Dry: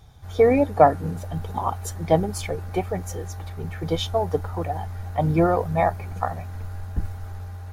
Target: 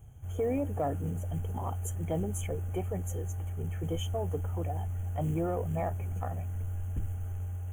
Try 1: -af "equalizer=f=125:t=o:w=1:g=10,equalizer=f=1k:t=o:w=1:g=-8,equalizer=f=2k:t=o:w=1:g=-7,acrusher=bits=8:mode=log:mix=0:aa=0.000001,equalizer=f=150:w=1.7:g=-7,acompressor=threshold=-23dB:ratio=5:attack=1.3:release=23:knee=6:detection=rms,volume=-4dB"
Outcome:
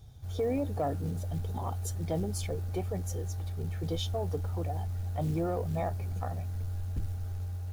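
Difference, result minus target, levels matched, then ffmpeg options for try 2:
4000 Hz band +5.0 dB
-af "equalizer=f=125:t=o:w=1:g=10,equalizer=f=1k:t=o:w=1:g=-8,equalizer=f=2k:t=o:w=1:g=-7,acrusher=bits=8:mode=log:mix=0:aa=0.000001,asuperstop=centerf=4500:order=20:qfactor=1.6,equalizer=f=150:w=1.7:g=-7,acompressor=threshold=-23dB:ratio=5:attack=1.3:release=23:knee=6:detection=rms,volume=-4dB"

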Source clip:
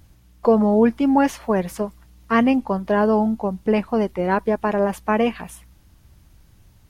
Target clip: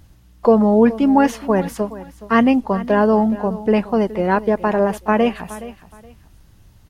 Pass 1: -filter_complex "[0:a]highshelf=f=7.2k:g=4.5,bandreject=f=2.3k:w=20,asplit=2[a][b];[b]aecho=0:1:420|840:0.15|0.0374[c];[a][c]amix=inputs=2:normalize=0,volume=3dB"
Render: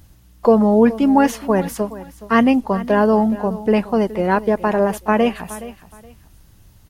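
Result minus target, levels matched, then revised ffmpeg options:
8000 Hz band +4.0 dB
-filter_complex "[0:a]highshelf=f=7.2k:g=-3,bandreject=f=2.3k:w=20,asplit=2[a][b];[b]aecho=0:1:420|840:0.15|0.0374[c];[a][c]amix=inputs=2:normalize=0,volume=3dB"

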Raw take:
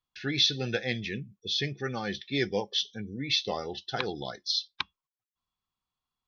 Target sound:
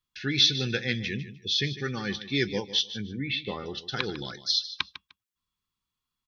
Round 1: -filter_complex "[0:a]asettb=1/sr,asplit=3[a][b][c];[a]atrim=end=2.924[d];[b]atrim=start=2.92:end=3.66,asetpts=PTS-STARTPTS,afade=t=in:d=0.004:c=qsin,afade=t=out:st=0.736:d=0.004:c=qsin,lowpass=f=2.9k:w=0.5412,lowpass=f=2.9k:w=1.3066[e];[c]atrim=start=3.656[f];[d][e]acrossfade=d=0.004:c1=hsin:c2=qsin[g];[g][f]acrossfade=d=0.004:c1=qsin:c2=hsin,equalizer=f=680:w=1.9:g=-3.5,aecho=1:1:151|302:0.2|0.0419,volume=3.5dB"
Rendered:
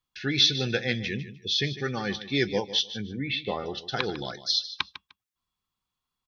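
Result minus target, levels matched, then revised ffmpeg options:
500 Hz band +3.0 dB
-filter_complex "[0:a]asettb=1/sr,asplit=3[a][b][c];[a]atrim=end=2.924[d];[b]atrim=start=2.92:end=3.66,asetpts=PTS-STARTPTS,afade=t=in:d=0.004:c=qsin,afade=t=out:st=0.736:d=0.004:c=qsin,lowpass=f=2.9k:w=0.5412,lowpass=f=2.9k:w=1.3066[e];[c]atrim=start=3.656[f];[d][e]acrossfade=d=0.004:c1=hsin:c2=qsin[g];[g][f]acrossfade=d=0.004:c1=qsin:c2=hsin,equalizer=f=680:w=1.9:g=-14,aecho=1:1:151|302:0.2|0.0419,volume=3.5dB"

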